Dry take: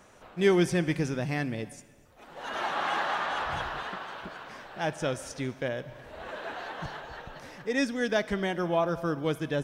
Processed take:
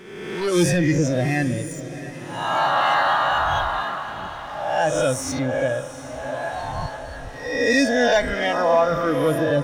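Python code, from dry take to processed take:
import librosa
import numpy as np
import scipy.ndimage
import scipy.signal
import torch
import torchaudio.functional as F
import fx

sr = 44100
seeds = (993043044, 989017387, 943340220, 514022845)

y = fx.spec_swells(x, sr, rise_s=1.26)
y = fx.leveller(y, sr, passes=2)
y = fx.noise_reduce_blind(y, sr, reduce_db=12)
y = fx.echo_diffused(y, sr, ms=748, feedback_pct=51, wet_db=-13)
y = F.gain(torch.from_numpy(y), 2.0).numpy()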